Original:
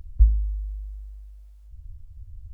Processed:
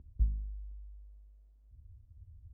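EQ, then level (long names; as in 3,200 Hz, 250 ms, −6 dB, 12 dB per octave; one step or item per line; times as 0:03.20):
resonant band-pass 220 Hz, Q 1.3
+1.0 dB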